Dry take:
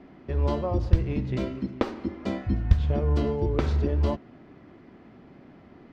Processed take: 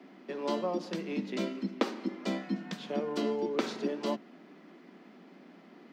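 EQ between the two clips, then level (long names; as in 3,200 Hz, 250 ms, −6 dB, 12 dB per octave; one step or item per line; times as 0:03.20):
Butterworth high-pass 170 Hz 96 dB per octave
high-shelf EQ 2,900 Hz +10.5 dB
−3.5 dB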